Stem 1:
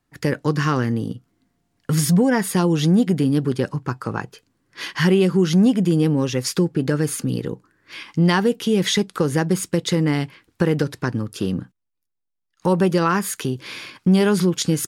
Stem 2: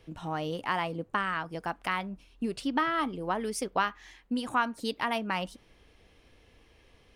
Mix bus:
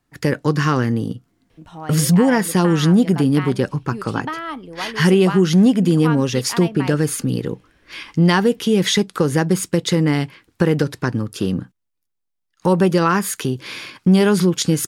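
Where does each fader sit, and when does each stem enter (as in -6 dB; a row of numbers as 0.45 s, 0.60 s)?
+2.5 dB, +0.5 dB; 0.00 s, 1.50 s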